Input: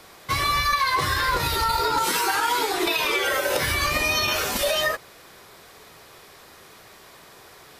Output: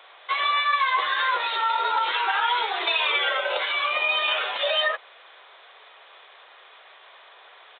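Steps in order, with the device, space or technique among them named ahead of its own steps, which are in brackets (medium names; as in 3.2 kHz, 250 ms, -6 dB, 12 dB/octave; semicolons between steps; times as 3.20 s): 3.29–4.19 s: band-stop 1.8 kHz, Q 7.6; musical greeting card (resampled via 8 kHz; high-pass 560 Hz 24 dB/octave; peaking EQ 3.5 kHz +4.5 dB 0.57 oct)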